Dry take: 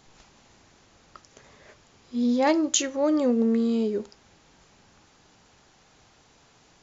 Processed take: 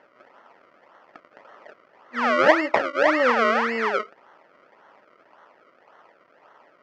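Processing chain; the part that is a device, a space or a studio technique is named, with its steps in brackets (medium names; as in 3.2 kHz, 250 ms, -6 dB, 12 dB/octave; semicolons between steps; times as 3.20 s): circuit-bent sampling toy (decimation with a swept rate 35×, swing 100% 1.8 Hz; cabinet simulation 440–4500 Hz, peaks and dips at 590 Hz +6 dB, 950 Hz +6 dB, 1.3 kHz +9 dB, 1.9 kHz +8 dB, 3.8 kHz -10 dB); trim +3 dB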